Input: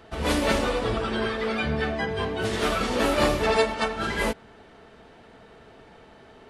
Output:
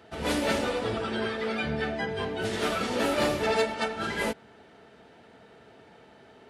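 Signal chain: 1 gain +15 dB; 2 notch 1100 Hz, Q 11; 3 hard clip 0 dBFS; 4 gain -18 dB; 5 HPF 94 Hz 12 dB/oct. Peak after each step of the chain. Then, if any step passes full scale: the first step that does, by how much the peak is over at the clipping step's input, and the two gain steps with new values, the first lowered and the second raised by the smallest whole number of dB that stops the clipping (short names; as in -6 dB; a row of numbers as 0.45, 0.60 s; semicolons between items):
+8.0, +7.5, 0.0, -18.0, -14.5 dBFS; step 1, 7.5 dB; step 1 +7 dB, step 4 -10 dB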